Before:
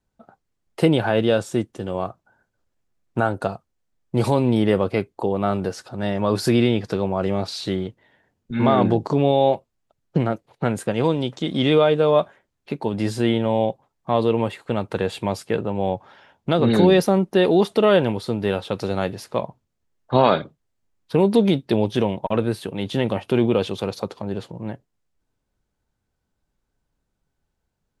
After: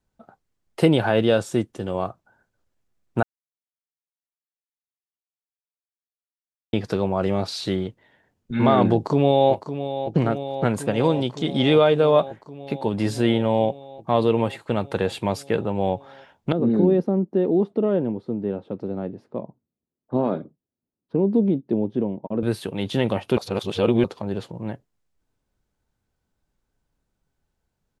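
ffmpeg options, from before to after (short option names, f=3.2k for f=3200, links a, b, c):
-filter_complex "[0:a]asplit=2[a][b];[b]afade=t=in:st=8.94:d=0.01,afade=t=out:st=9.52:d=0.01,aecho=0:1:560|1120|1680|2240|2800|3360|3920|4480|5040|5600|6160|6720:0.298538|0.238831|0.191064|0.152852|0.122281|0.097825|0.07826|0.062608|0.0500864|0.0400691|0.0320553|0.0256442[c];[a][c]amix=inputs=2:normalize=0,asettb=1/sr,asplit=3[d][e][f];[d]atrim=end=16.524[g];[e]atrim=start=16.52:end=22.43,asetpts=PTS-STARTPTS,afade=t=in:d=0.004:c=qsin,afade=t=out:st=5.906:d=0.004:c=qsin,bandpass=f=260:t=q:w=1.3[h];[f]atrim=start=22.426[i];[g][h]acrossfade=d=0.004:c1=hsin:c2=qsin[j];[j][i]acrossfade=d=0.004:c1=qsin:c2=hsin,asplit=5[k][l][m][n][o];[k]atrim=end=3.23,asetpts=PTS-STARTPTS,afade=t=out:st=3.226:d=0.004:c=hsin[p];[l]atrim=start=3.23:end=6.73,asetpts=PTS-STARTPTS,volume=0[q];[m]atrim=start=6.73:end=23.372,asetpts=PTS-STARTPTS,afade=t=in:d=0.004:c=hsin[r];[n]atrim=start=23.368:end=24.042,asetpts=PTS-STARTPTS,areverse[s];[o]atrim=start=24.038[t];[p][q][r]concat=n=3:v=0:a=1[u];[u][s]acrossfade=d=0.004:c1=hsin:c2=hsin[v];[v][t]acrossfade=d=0.004:c1=hsin:c2=hsin"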